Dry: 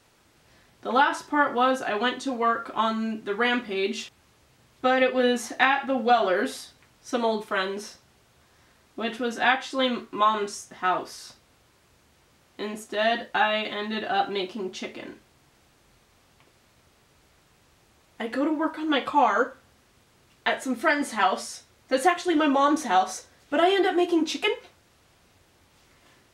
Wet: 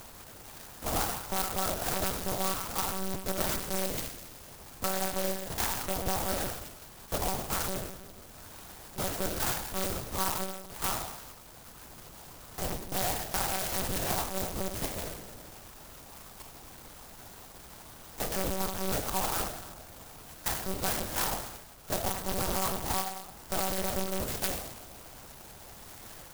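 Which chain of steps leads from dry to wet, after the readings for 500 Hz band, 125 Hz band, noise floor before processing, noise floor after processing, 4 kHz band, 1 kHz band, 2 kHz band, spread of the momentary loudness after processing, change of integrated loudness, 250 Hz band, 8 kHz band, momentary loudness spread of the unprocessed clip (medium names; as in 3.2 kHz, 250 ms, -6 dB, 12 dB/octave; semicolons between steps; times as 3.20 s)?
-10.5 dB, +9.0 dB, -62 dBFS, -50 dBFS, -5.5 dB, -11.0 dB, -12.5 dB, 17 LU, -7.0 dB, -11.5 dB, +6.5 dB, 14 LU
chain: cycle switcher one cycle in 2, muted; bass shelf 340 Hz -11.5 dB; compression 16:1, threshold -33 dBFS, peak gain reduction 16.5 dB; saturation -22.5 dBFS, distortion -25 dB; Schroeder reverb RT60 1 s, combs from 25 ms, DRR 3.5 dB; upward compressor, threshold -41 dBFS; monotone LPC vocoder at 8 kHz 190 Hz; sampling jitter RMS 0.14 ms; trim +6.5 dB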